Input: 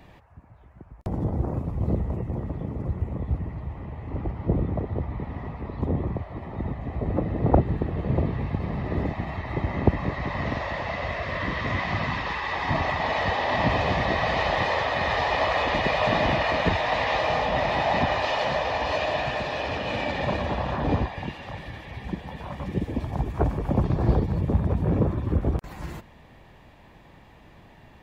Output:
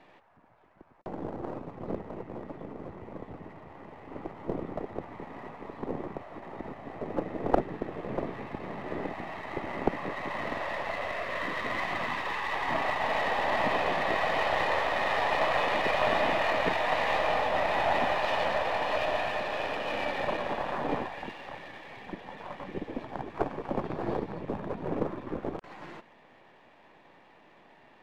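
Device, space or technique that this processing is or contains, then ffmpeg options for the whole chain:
crystal radio: -af "highpass=310,lowpass=3300,aeval=exprs='if(lt(val(0),0),0.447*val(0),val(0))':c=same"

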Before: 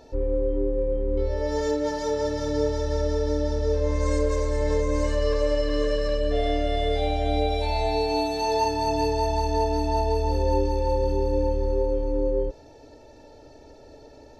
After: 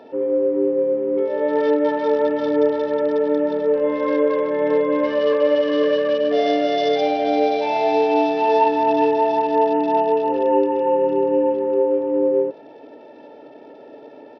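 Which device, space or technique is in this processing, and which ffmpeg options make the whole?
Bluetooth headset: -af "highpass=110,highpass=f=190:w=0.5412,highpass=f=190:w=1.3066,aemphasis=mode=reproduction:type=cd,aresample=8000,aresample=44100,volume=2.37" -ar 44100 -c:a sbc -b:a 64k

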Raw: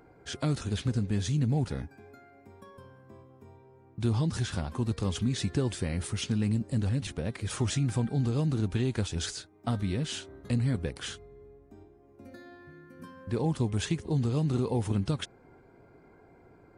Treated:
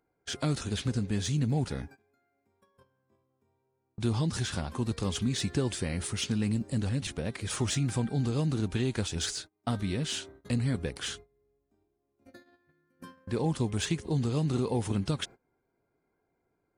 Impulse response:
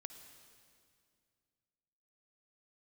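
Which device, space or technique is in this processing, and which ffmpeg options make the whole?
exciter from parts: -filter_complex "[0:a]agate=range=0.0891:threshold=0.00501:ratio=16:detection=peak,asplit=2[s0][s1];[s1]highpass=f=2400:p=1,asoftclip=type=tanh:threshold=0.0188,volume=0.631[s2];[s0][s2]amix=inputs=2:normalize=0,equalizer=f=97:w=1.5:g=-3"

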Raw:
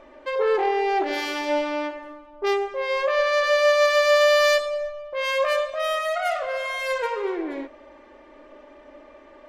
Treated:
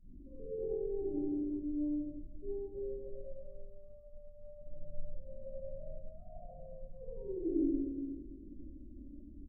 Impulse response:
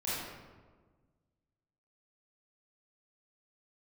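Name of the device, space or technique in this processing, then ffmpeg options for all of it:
club heard from the street: -filter_complex "[0:a]asettb=1/sr,asplit=3[s0][s1][s2];[s0]atrim=end=5.114[s3];[s1]atrim=start=5.11:end=6.08,asetpts=PTS-STARTPTS,afade=t=in:d=0.004:c=qsin,afade=t=out:st=0.966:d=0.004:c=qsin,lowpass=1200[s4];[s2]atrim=start=6.076[s5];[s3][s4]acrossfade=d=0.004:c1=hsin:c2=qsin[s6];[s6][s5]acrossfade=d=0.004:c1=qsin:c2=hsin,asplit=2[s7][s8];[s8]adelay=95,lowpass=f=1300:p=1,volume=0.708,asplit=2[s9][s10];[s10]adelay=95,lowpass=f=1300:p=1,volume=0.32,asplit=2[s11][s12];[s12]adelay=95,lowpass=f=1300:p=1,volume=0.32,asplit=2[s13][s14];[s14]adelay=95,lowpass=f=1300:p=1,volume=0.32[s15];[s7][s9][s11][s13][s15]amix=inputs=5:normalize=0,alimiter=limit=0.168:level=0:latency=1:release=80,lowpass=f=210:w=0.5412,lowpass=f=210:w=1.3066[s16];[1:a]atrim=start_sample=2205[s17];[s16][s17]afir=irnorm=-1:irlink=0,afftdn=nr=13:nf=-56,volume=1.58"

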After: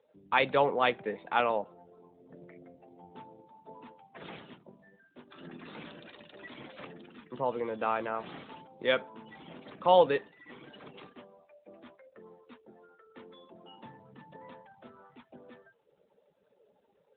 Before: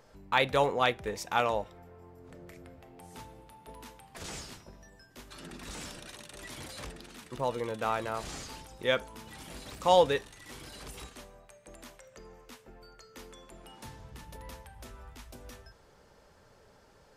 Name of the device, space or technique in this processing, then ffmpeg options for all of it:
mobile call with aggressive noise cancelling: -filter_complex "[0:a]asettb=1/sr,asplit=3[s0][s1][s2];[s0]atrim=end=9.504[s3];[s1]atrim=start=9.5:end=10.69,asetpts=PTS-STARTPTS,afade=t=in:d=0.004:c=qsin,afade=t=out:st=1.186:d=0.004:c=qsin,lowpass=5000[s4];[s2]atrim=start=10.686[s5];[s3][s4]acrossfade=d=0.004:c1=hsin:c2=qsin[s6];[s6][s5]acrossfade=d=0.004:c1=qsin:c2=hsin,highpass=f=150:w=0.5412,highpass=f=150:w=1.3066,afftdn=nr=19:nf=-52,volume=1.12" -ar 8000 -c:a libopencore_amrnb -b:a 12200

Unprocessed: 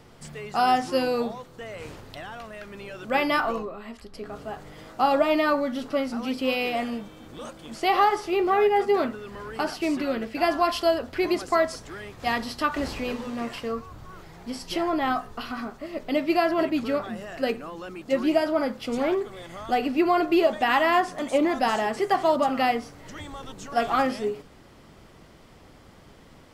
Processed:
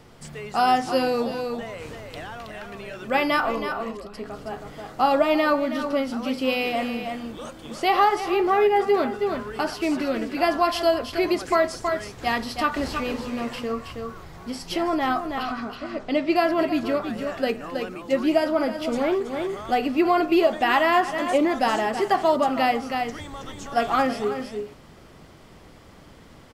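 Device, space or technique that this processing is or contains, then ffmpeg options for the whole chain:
ducked delay: -filter_complex "[0:a]asettb=1/sr,asplit=3[s0][s1][s2];[s0]atrim=end=15.434[s3];[s1]atrim=start=15.43:end=16.36,asetpts=PTS-STARTPTS,afade=t=in:d=0.004:c=qsin,afade=t=out:st=0.926:d=0.004:c=qsin,lowpass=7000[s4];[s2]atrim=start=16.356[s5];[s3][s4]acrossfade=d=0.004:c1=hsin:c2=qsin[s6];[s6][s5]acrossfade=d=0.004:c1=qsin:c2=hsin,asplit=3[s7][s8][s9];[s8]adelay=322,volume=0.562[s10];[s9]apad=whole_len=1184292[s11];[s10][s11]sidechaincompress=threshold=0.0224:ratio=8:attack=36:release=165[s12];[s7][s12]amix=inputs=2:normalize=0,volume=1.19"

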